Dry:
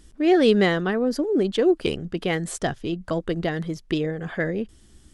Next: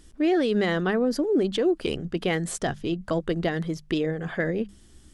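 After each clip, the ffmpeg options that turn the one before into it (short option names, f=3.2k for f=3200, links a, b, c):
-af "bandreject=f=50:t=h:w=6,bandreject=f=100:t=h:w=6,bandreject=f=150:t=h:w=6,bandreject=f=200:t=h:w=6,alimiter=limit=-15.5dB:level=0:latency=1:release=58"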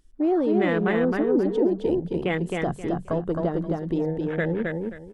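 -af "afwtdn=0.0282,aecho=1:1:265|530|795:0.708|0.163|0.0375"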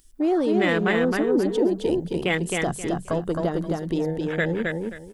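-af "crystalizer=i=5:c=0"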